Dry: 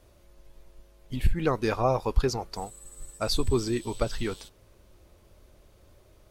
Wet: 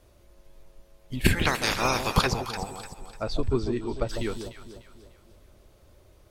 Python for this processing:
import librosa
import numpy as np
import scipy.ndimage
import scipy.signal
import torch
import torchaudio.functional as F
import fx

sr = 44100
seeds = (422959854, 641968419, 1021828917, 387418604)

y = fx.spec_clip(x, sr, under_db=30, at=(1.24, 2.26), fade=0.02)
y = fx.spacing_loss(y, sr, db_at_10k=20, at=(2.94, 4.09))
y = fx.echo_alternate(y, sr, ms=149, hz=880.0, feedback_pct=63, wet_db=-7)